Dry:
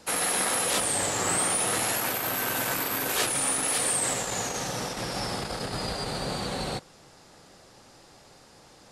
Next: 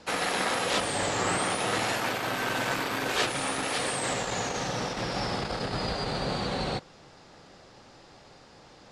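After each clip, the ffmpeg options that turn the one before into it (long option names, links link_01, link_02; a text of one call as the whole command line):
ffmpeg -i in.wav -af "lowpass=5000,volume=1.5dB" out.wav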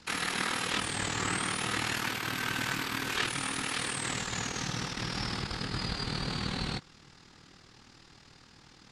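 ffmpeg -i in.wav -filter_complex "[0:a]equalizer=frequency=600:width_type=o:width=1.1:gain=-15,acrossover=split=540|3200[link_01][link_02][link_03];[link_03]alimiter=level_in=6.5dB:limit=-24dB:level=0:latency=1:release=19,volume=-6.5dB[link_04];[link_01][link_02][link_04]amix=inputs=3:normalize=0,tremolo=f=39:d=0.621,volume=2.5dB" out.wav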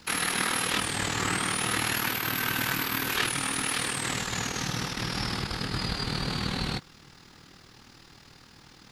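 ffmpeg -i in.wav -af "aexciter=amount=4.5:drive=7.1:freq=11000,volume=3.5dB" out.wav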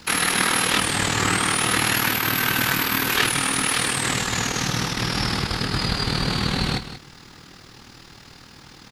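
ffmpeg -i in.wav -af "aecho=1:1:184:0.237,volume=7dB" out.wav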